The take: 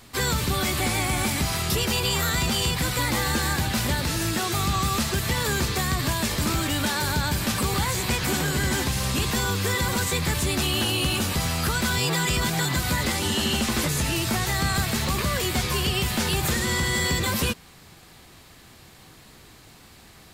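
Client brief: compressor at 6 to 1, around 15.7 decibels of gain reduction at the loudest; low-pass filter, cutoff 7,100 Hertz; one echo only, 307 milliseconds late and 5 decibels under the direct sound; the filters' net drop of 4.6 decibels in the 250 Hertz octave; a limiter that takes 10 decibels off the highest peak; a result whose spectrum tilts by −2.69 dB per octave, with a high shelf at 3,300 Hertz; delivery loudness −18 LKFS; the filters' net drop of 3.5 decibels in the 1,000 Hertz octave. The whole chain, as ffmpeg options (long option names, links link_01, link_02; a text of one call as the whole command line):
ffmpeg -i in.wav -af "lowpass=7100,equalizer=frequency=250:width_type=o:gain=-6.5,equalizer=frequency=1000:width_type=o:gain=-4.5,highshelf=frequency=3300:gain=4.5,acompressor=threshold=-39dB:ratio=6,alimiter=level_in=12dB:limit=-24dB:level=0:latency=1,volume=-12dB,aecho=1:1:307:0.562,volume=25dB" out.wav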